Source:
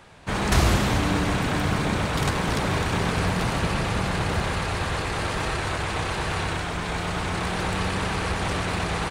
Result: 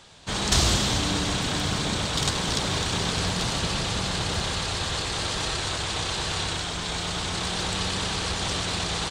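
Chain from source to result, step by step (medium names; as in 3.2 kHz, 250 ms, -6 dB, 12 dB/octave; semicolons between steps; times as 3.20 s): high-order bell 5.1 kHz +11.5 dB; trim -4 dB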